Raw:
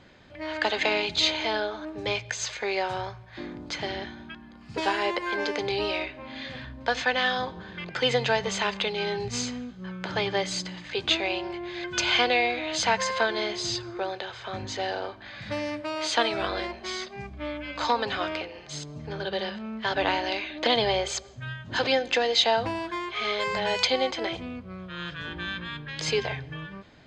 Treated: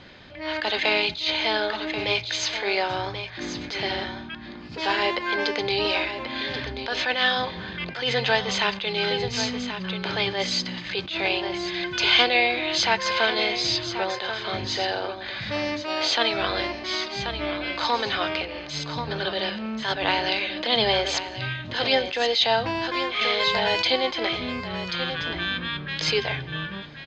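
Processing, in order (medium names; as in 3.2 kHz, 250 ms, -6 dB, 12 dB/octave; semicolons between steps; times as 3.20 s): low-pass 5 kHz 24 dB/octave; treble shelf 2.9 kHz +9 dB; in parallel at -1 dB: compression, threshold -34 dBFS, peak gain reduction 20 dB; on the sum: delay 1084 ms -10 dB; attacks held to a fixed rise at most 100 dB/s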